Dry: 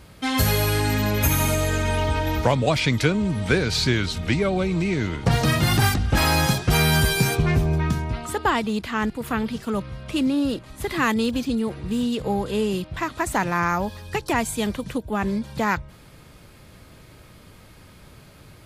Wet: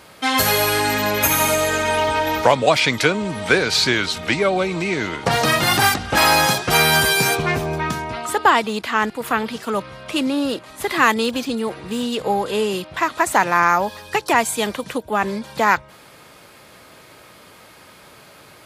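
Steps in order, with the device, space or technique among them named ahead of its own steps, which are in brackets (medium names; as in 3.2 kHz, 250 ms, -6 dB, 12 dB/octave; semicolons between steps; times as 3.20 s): filter by subtraction (in parallel: low-pass 770 Hz 12 dB/octave + polarity flip); on the sum: trim +6 dB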